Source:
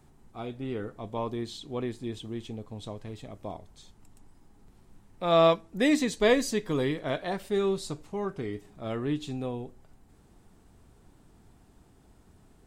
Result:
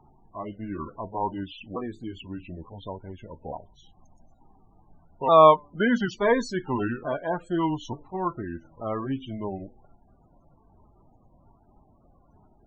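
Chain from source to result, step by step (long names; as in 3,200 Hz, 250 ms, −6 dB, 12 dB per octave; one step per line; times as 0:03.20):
pitch shifter swept by a sawtooth −5 semitones, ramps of 881 ms
spectral peaks only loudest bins 32
parametric band 1,000 Hz +13 dB 1.1 octaves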